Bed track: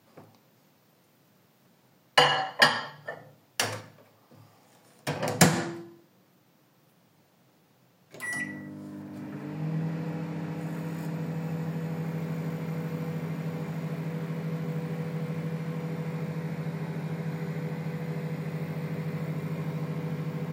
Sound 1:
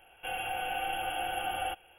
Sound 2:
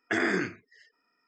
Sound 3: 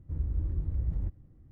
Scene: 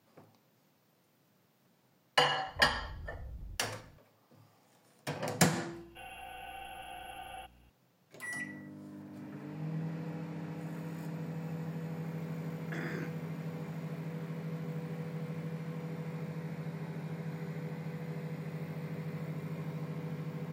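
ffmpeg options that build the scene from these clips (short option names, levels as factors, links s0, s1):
-filter_complex "[0:a]volume=0.447[s0];[3:a]acompressor=threshold=0.0158:ratio=6:attack=3.2:release=140:knee=1:detection=peak[s1];[1:a]aeval=exprs='val(0)+0.00398*(sin(2*PI*60*n/s)+sin(2*PI*2*60*n/s)/2+sin(2*PI*3*60*n/s)/3+sin(2*PI*4*60*n/s)/4+sin(2*PI*5*60*n/s)/5)':c=same[s2];[s1]atrim=end=1.51,asetpts=PTS-STARTPTS,volume=0.501,afade=t=in:d=0.004:c=hsin,afade=t=out:st=1.506:d=0.004:c=hsin,adelay=2470[s3];[s2]atrim=end=1.98,asetpts=PTS-STARTPTS,volume=0.237,afade=t=in:d=0.004:c=hsin,afade=t=out:st=1.976:d=0.004:c=hsin,adelay=5720[s4];[2:a]atrim=end=1.27,asetpts=PTS-STARTPTS,volume=0.168,afade=t=in:d=0.004:c=hsin,afade=t=out:st=1.266:d=0.004:c=hsin,adelay=12610[s5];[s0][s3][s4][s5]amix=inputs=4:normalize=0"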